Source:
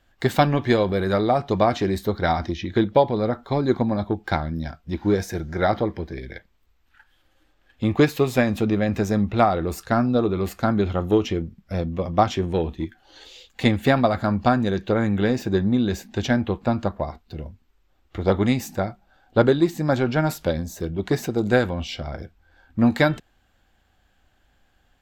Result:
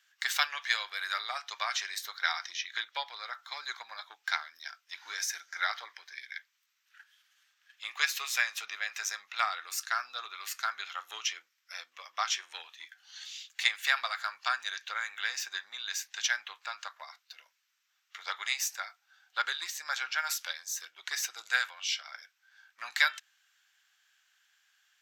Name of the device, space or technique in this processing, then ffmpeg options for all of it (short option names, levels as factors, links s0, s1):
headphones lying on a table: -af "highpass=f=1400:w=0.5412,highpass=f=1400:w=1.3066,equalizer=f=5900:t=o:w=0.45:g=8"